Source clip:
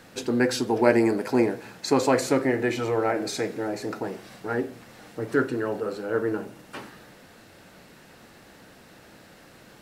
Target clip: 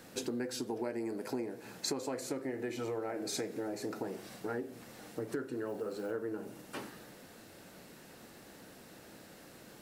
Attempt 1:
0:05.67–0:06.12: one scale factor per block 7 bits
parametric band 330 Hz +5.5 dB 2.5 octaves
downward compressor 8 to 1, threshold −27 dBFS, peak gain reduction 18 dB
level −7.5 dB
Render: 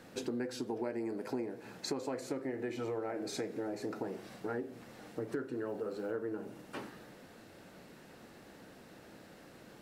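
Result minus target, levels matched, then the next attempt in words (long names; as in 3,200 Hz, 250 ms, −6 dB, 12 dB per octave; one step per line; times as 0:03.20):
8,000 Hz band −6.0 dB
0:05.67–0:06.12: one scale factor per block 7 bits
parametric band 330 Hz +5.5 dB 2.5 octaves
downward compressor 8 to 1, threshold −27 dBFS, peak gain reduction 18 dB
high-shelf EQ 5,300 Hz +10 dB
level −7.5 dB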